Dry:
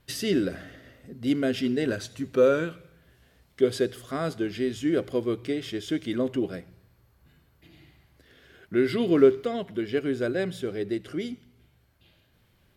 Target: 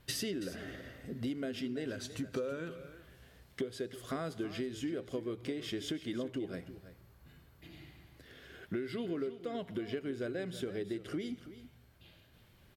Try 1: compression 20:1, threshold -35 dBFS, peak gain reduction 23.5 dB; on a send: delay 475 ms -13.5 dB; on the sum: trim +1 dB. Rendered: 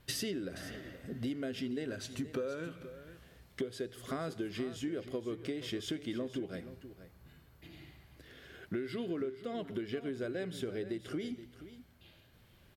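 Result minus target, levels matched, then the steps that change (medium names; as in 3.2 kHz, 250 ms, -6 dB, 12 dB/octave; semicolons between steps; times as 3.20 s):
echo 148 ms late
change: delay 327 ms -13.5 dB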